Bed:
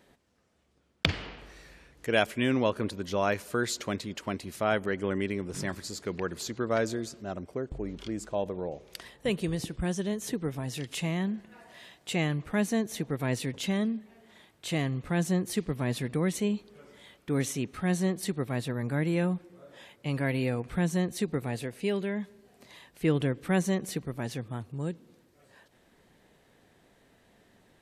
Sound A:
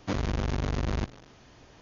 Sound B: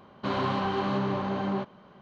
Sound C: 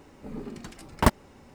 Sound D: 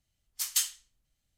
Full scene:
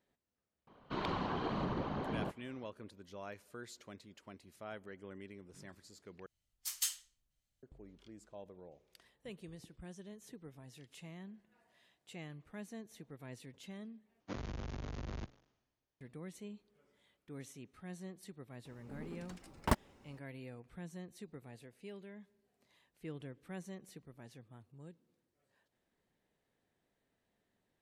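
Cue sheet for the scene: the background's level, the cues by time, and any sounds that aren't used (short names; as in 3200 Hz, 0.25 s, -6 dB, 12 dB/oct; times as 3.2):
bed -20 dB
0.67 add B -9.5 dB + whisperiser
6.26 replace with D -8 dB
14.2 replace with A -14 dB + three-band expander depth 100%
18.65 add C -11 dB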